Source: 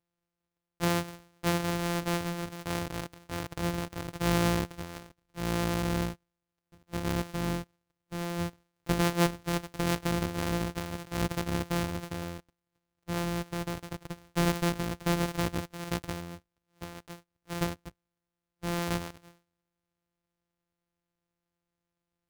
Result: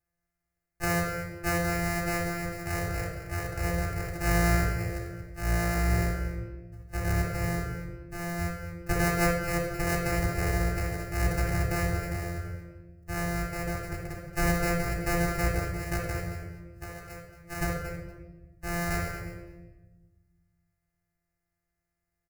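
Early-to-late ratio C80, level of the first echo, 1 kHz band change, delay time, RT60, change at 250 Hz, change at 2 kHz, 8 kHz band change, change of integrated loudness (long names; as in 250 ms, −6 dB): 4.5 dB, −12.5 dB, +1.5 dB, 226 ms, 1.2 s, −1.0 dB, +6.0 dB, +2.5 dB, +2.0 dB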